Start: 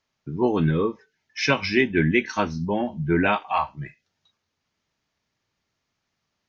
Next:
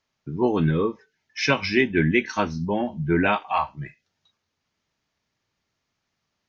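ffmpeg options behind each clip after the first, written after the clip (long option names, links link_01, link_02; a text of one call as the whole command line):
ffmpeg -i in.wav -af anull out.wav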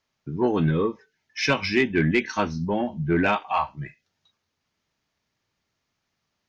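ffmpeg -i in.wav -af "asoftclip=type=tanh:threshold=-10dB" out.wav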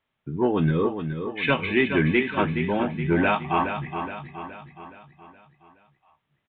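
ffmpeg -i in.wav -filter_complex "[0:a]asplit=2[link_01][link_02];[link_02]aecho=0:1:420|840|1260|1680|2100|2520:0.398|0.199|0.0995|0.0498|0.0249|0.0124[link_03];[link_01][link_03]amix=inputs=2:normalize=0,aresample=8000,aresample=44100" out.wav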